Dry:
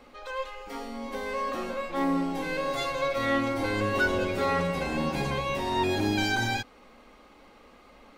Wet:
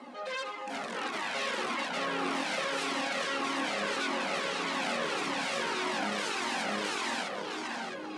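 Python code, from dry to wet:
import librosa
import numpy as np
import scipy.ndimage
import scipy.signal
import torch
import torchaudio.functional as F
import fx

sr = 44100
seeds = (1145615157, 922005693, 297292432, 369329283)

p1 = fx.rattle_buzz(x, sr, strikes_db=-44.0, level_db=-25.0)
p2 = fx.echo_feedback(p1, sr, ms=661, feedback_pct=50, wet_db=-5)
p3 = fx.over_compress(p2, sr, threshold_db=-29.0, ratio=-0.5)
p4 = p2 + (p3 * 10.0 ** (1.0 / 20.0))
p5 = np.clip(p4, -10.0 ** (-19.5 / 20.0), 10.0 ** (-19.5 / 20.0))
p6 = fx.tilt_shelf(p5, sr, db=3.5, hz=1400.0)
p7 = fx.notch(p6, sr, hz=2400.0, q=12.0)
p8 = fx.cheby_harmonics(p7, sr, harmonics=(3, 7), levels_db=(-6, -18), full_scale_db=-14.5)
p9 = scipy.signal.sosfilt(scipy.signal.ellip(3, 1.0, 40, [210.0, 9800.0], 'bandpass', fs=sr, output='sos'), p8)
p10 = fx.comb_cascade(p9, sr, direction='falling', hz=1.7)
y = p10 * 10.0 ** (-1.0 / 20.0)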